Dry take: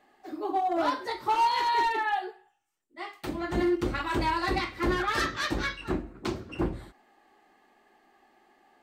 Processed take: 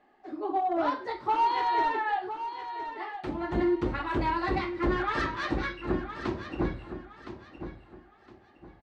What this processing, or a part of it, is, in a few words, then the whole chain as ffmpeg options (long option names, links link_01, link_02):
through cloth: -af "lowpass=6300,highshelf=frequency=3600:gain=-13,aecho=1:1:1014|2028|3042:0.299|0.0836|0.0234"